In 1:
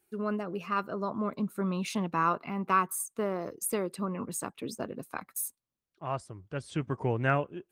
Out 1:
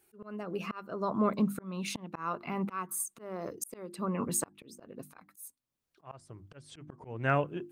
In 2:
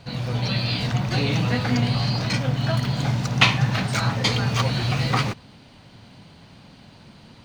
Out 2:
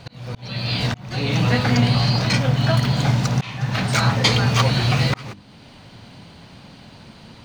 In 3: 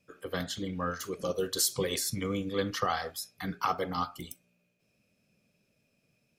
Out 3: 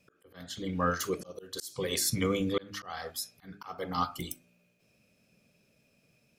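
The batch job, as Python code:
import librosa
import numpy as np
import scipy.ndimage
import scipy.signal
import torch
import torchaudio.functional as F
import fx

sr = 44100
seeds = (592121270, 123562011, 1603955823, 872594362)

y = fx.hum_notches(x, sr, base_hz=50, count=7)
y = fx.auto_swell(y, sr, attack_ms=536.0)
y = y * 10.0 ** (5.0 / 20.0)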